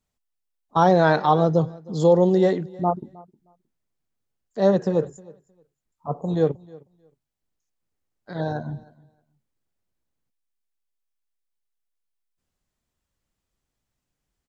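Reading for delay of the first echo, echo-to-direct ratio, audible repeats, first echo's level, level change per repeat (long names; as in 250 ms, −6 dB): 312 ms, −23.0 dB, 1, −23.0 dB, repeats not evenly spaced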